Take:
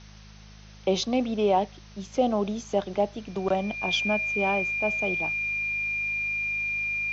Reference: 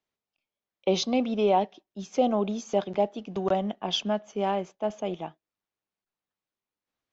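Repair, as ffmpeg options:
-af "bandreject=f=52.1:t=h:w=4,bandreject=f=104.2:t=h:w=4,bandreject=f=156.3:t=h:w=4,bandreject=f=208.4:t=h:w=4,bandreject=f=2.4k:w=30,afwtdn=0.0032"

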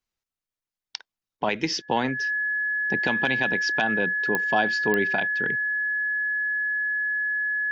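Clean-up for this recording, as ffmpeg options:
-af "adeclick=t=4,bandreject=f=1.7k:w=30"

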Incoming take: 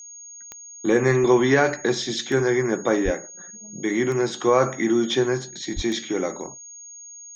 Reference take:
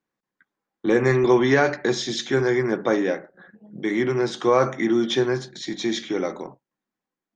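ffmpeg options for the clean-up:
-filter_complex "[0:a]adeclick=t=4,bandreject=f=6.6k:w=30,asplit=3[a][b][c];[a]afade=t=out:st=3.04:d=0.02[d];[b]highpass=f=140:w=0.5412,highpass=f=140:w=1.3066,afade=t=in:st=3.04:d=0.02,afade=t=out:st=3.16:d=0.02[e];[c]afade=t=in:st=3.16:d=0.02[f];[d][e][f]amix=inputs=3:normalize=0,asplit=3[g][h][i];[g]afade=t=out:st=5.75:d=0.02[j];[h]highpass=f=140:w=0.5412,highpass=f=140:w=1.3066,afade=t=in:st=5.75:d=0.02,afade=t=out:st=5.87:d=0.02[k];[i]afade=t=in:st=5.87:d=0.02[l];[j][k][l]amix=inputs=3:normalize=0,asetnsamples=n=441:p=0,asendcmd='6.74 volume volume 7.5dB',volume=0dB"

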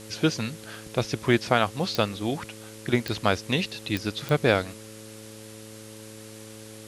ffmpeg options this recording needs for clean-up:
-af "adeclick=t=4,bandreject=f=108.8:t=h:w=4,bandreject=f=217.6:t=h:w=4,bandreject=f=326.4:t=h:w=4,bandreject=f=435.2:t=h:w=4,bandreject=f=544:t=h:w=4,afftdn=nr=26:nf=-44"

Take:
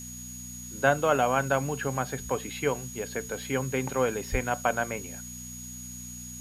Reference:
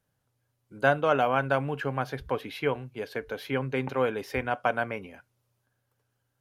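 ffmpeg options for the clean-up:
-filter_complex "[0:a]bandreject=f=61.1:t=h:w=4,bandreject=f=122.2:t=h:w=4,bandreject=f=183.3:t=h:w=4,bandreject=f=244.4:t=h:w=4,bandreject=f=6.7k:w=30,asplit=3[a][b][c];[a]afade=t=out:st=4.31:d=0.02[d];[b]highpass=f=140:w=0.5412,highpass=f=140:w=1.3066,afade=t=in:st=4.31:d=0.02,afade=t=out:st=4.43:d=0.02[e];[c]afade=t=in:st=4.43:d=0.02[f];[d][e][f]amix=inputs=3:normalize=0,afftdn=nr=30:nf=-41"

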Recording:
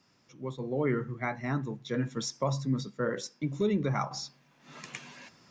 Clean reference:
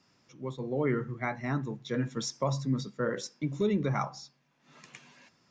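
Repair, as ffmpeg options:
-af "asetnsamples=n=441:p=0,asendcmd='4.11 volume volume -8dB',volume=0dB"

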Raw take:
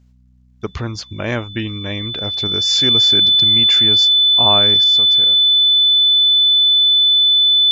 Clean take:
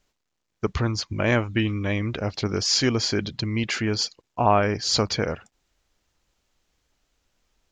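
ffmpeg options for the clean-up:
-af "bandreject=f=62.3:t=h:w=4,bandreject=f=124.6:t=h:w=4,bandreject=f=186.9:t=h:w=4,bandreject=f=249.2:t=h:w=4,bandreject=f=3.5k:w=30,asetnsamples=n=441:p=0,asendcmd='4.84 volume volume 11.5dB',volume=0dB"

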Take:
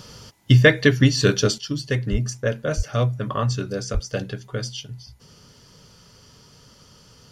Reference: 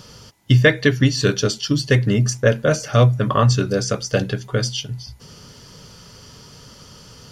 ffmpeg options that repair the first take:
-filter_complex "[0:a]asplit=3[a][b][c];[a]afade=t=out:st=2.11:d=0.02[d];[b]highpass=f=140:w=0.5412,highpass=f=140:w=1.3066,afade=t=in:st=2.11:d=0.02,afade=t=out:st=2.23:d=0.02[e];[c]afade=t=in:st=2.23:d=0.02[f];[d][e][f]amix=inputs=3:normalize=0,asplit=3[g][h][i];[g]afade=t=out:st=2.76:d=0.02[j];[h]highpass=f=140:w=0.5412,highpass=f=140:w=1.3066,afade=t=in:st=2.76:d=0.02,afade=t=out:st=2.88:d=0.02[k];[i]afade=t=in:st=2.88:d=0.02[l];[j][k][l]amix=inputs=3:normalize=0,asplit=3[m][n][o];[m]afade=t=out:st=3.93:d=0.02[p];[n]highpass=f=140:w=0.5412,highpass=f=140:w=1.3066,afade=t=in:st=3.93:d=0.02,afade=t=out:st=4.05:d=0.02[q];[o]afade=t=in:st=4.05:d=0.02[r];[p][q][r]amix=inputs=3:normalize=0,asetnsamples=n=441:p=0,asendcmd='1.58 volume volume 7.5dB',volume=0dB"

